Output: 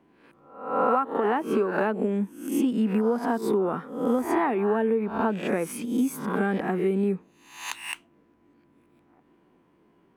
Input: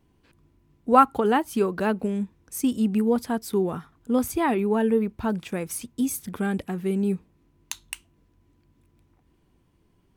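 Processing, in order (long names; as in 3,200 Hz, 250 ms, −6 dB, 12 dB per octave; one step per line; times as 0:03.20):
peak hold with a rise ahead of every peak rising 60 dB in 0.59 s
three-way crossover with the lows and the highs turned down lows −24 dB, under 190 Hz, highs −15 dB, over 2,400 Hz
downward compressor 10 to 1, threshold −26 dBFS, peak gain reduction 17 dB
level +6 dB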